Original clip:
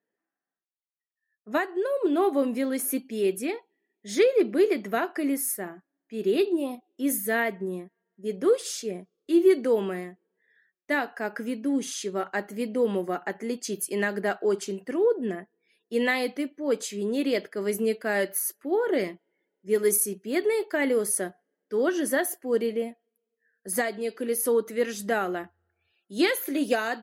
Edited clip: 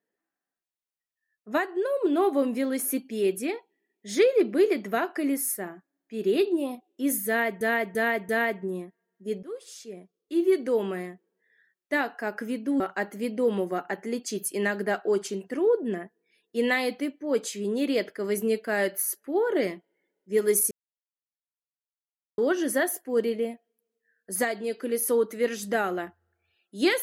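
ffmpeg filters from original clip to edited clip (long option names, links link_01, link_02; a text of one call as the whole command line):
ffmpeg -i in.wav -filter_complex "[0:a]asplit=8[link_01][link_02][link_03][link_04][link_05][link_06][link_07][link_08];[link_01]atrim=end=7.612[link_09];[link_02]atrim=start=7.268:end=7.612[link_10];[link_03]atrim=start=7.268:end=7.612[link_11];[link_04]atrim=start=7.268:end=8.41,asetpts=PTS-STARTPTS,afade=type=out:start_time=1.138:duration=0.004:curve=hsin:silence=0.105925[link_12];[link_05]atrim=start=8.41:end=11.782,asetpts=PTS-STARTPTS,afade=type=in:duration=1.64:silence=0.105925[link_13];[link_06]atrim=start=12.168:end=20.08,asetpts=PTS-STARTPTS,afade=type=out:start_time=7.908:duration=0.004:curve=hsin[link_14];[link_07]atrim=start=20.08:end=21.75,asetpts=PTS-STARTPTS,volume=0[link_15];[link_08]atrim=start=21.75,asetpts=PTS-STARTPTS,afade=type=in:duration=0.004:curve=hsin[link_16];[link_09][link_10]acrossfade=duration=0.004:curve1=hsin:curve2=hsin[link_17];[link_17][link_11]acrossfade=duration=0.004:curve1=hsin:curve2=hsin[link_18];[link_12][link_13]concat=n=2:v=0:a=1[link_19];[link_18][link_19]acrossfade=duration=0.004:curve1=hsin:curve2=hsin[link_20];[link_14][link_15][link_16]concat=n=3:v=0:a=1[link_21];[link_20][link_21]acrossfade=duration=0.004:curve1=hsin:curve2=hsin" out.wav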